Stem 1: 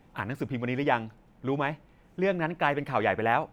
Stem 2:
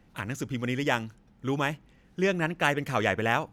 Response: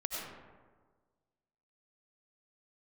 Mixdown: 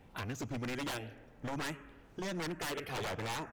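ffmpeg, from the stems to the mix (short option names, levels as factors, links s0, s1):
-filter_complex "[0:a]acompressor=threshold=0.0178:ratio=6,volume=0.841[s0];[1:a]asplit=2[s1][s2];[s2]afreqshift=1.1[s3];[s1][s3]amix=inputs=2:normalize=1,adelay=2.2,volume=0.596,asplit=2[s4][s5];[s5]volume=0.0944[s6];[2:a]atrim=start_sample=2205[s7];[s6][s7]afir=irnorm=-1:irlink=0[s8];[s0][s4][s8]amix=inputs=3:normalize=0,aeval=exprs='0.0237*(abs(mod(val(0)/0.0237+3,4)-2)-1)':c=same"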